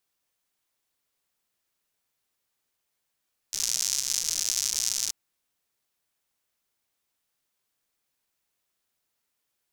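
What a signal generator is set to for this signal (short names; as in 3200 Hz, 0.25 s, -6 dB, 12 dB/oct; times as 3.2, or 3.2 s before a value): rain from filtered ticks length 1.58 s, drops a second 140, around 6000 Hz, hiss -24.5 dB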